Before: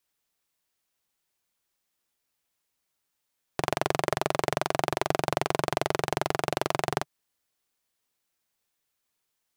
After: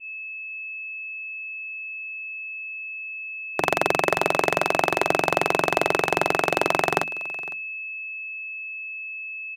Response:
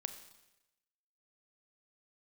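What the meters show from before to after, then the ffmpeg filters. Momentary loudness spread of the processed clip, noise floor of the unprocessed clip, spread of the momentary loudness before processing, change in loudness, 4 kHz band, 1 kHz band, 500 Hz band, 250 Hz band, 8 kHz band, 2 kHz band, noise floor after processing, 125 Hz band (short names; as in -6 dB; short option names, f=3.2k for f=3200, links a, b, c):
10 LU, -80 dBFS, 4 LU, +4.0 dB, +4.5 dB, +6.0 dB, +6.0 dB, +4.5 dB, +3.0 dB, +12.0 dB, -35 dBFS, -0.5 dB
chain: -filter_complex "[0:a]equalizer=f=120:w=4.8:g=-7,bandreject=f=50:t=h:w=6,bandreject=f=100:t=h:w=6,bandreject=f=150:t=h:w=6,bandreject=f=200:t=h:w=6,bandreject=f=250:t=h:w=6,bandreject=f=300:t=h:w=6,acrossover=split=150|2400[a][b][c];[b]dynaudnorm=f=170:g=13:m=13.5dB[d];[a][d][c]amix=inputs=3:normalize=0,aeval=exprs='val(0)+0.0316*sin(2*PI*2600*n/s)':c=same,aecho=1:1:507:0.0944,adynamicequalizer=threshold=0.0224:dfrequency=2000:dqfactor=0.7:tfrequency=2000:tqfactor=0.7:attack=5:release=100:ratio=0.375:range=3:mode=boostabove:tftype=highshelf,volume=-3dB"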